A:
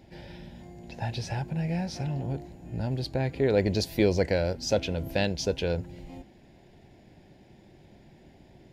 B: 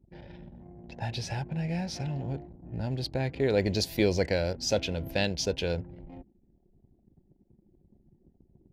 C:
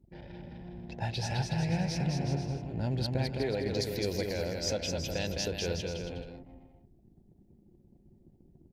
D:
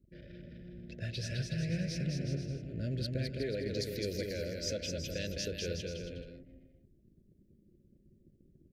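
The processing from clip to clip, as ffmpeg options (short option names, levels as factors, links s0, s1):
-af "anlmdn=0.0251,adynamicequalizer=threshold=0.00631:dfrequency=2000:dqfactor=0.7:tfrequency=2000:tqfactor=0.7:attack=5:release=100:ratio=0.375:range=2:mode=boostabove:tftype=highshelf,volume=0.794"
-af "alimiter=limit=0.0708:level=0:latency=1:release=423,aecho=1:1:210|367.5|485.6|574.2|640.7:0.631|0.398|0.251|0.158|0.1"
-af "asuperstop=centerf=950:order=12:qfactor=1.2,volume=0.631"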